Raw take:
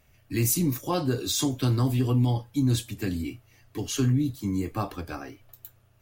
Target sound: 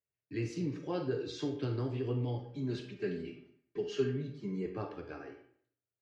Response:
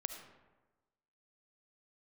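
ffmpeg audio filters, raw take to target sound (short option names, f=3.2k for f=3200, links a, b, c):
-filter_complex "[0:a]highpass=130,equalizer=f=230:t=q:w=4:g=-9,equalizer=f=430:t=q:w=4:g=8,equalizer=f=770:t=q:w=4:g=-5,equalizer=f=1.1k:t=q:w=4:g=-8,equalizer=f=2.5k:t=q:w=4:g=-3,equalizer=f=3.7k:t=q:w=4:g=-9,lowpass=f=4.1k:w=0.5412,lowpass=f=4.1k:w=1.3066,agate=range=-24dB:threshold=-54dB:ratio=16:detection=peak,asettb=1/sr,asplit=3[a][b][c];[a]atrim=end=2.394[d];[b]atrim=start=2.39:end=4.66,asetpts=PTS-STARTPTS,afade=t=in:d=0.004:c=qsin,afade=t=out:st=2.266:d=0.004:c=qsin,aecho=1:1:5:0.83,atrim=end_sample=100107[e];[c]atrim=start=4.656[f];[d][e]acrossfade=d=0.004:c1=hsin:c2=qsin[g];[g][f]acrossfade=d=0.004:c1=qsin:c2=hsin[h];[1:a]atrim=start_sample=2205,asetrate=88200,aresample=44100[i];[h][i]afir=irnorm=-1:irlink=0"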